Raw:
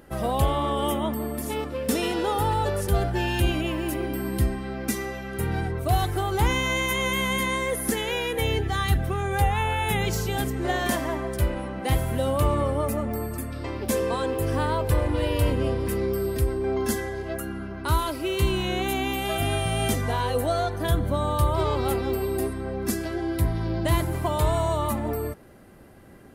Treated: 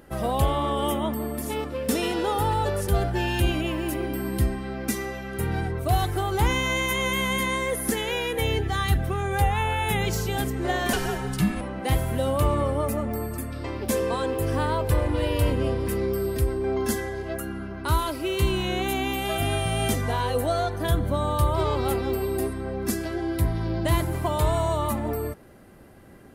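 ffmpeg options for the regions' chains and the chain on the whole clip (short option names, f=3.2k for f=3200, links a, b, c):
-filter_complex "[0:a]asettb=1/sr,asplit=3[a][b][c];[a]atrim=end=10.934[d];[b]atrim=start=10.93:end=11.61,asetpts=PTS-STARTPTS,afade=t=in:d=0.004:c=qsin,afade=t=out:st=0.676:d=0.004:c=qsin,acrossover=split=6500[e][f];[f]acompressor=threshold=-48dB:ratio=4:attack=1:release=60[g];[e][g]amix=inputs=2:normalize=0,highshelf=f=2.5k:g=10,afreqshift=-260[h];[c]atrim=start=11.606[i];[d][h]acrossfade=d=0.004:c1=hsin:c2=qsin[j];[j][i]acrossfade=d=0.004:c1=qsin:c2=hsin"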